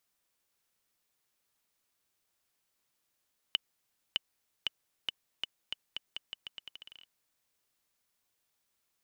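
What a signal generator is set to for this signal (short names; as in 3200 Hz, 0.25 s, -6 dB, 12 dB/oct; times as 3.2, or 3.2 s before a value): bouncing ball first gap 0.61 s, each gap 0.83, 2980 Hz, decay 19 ms -13 dBFS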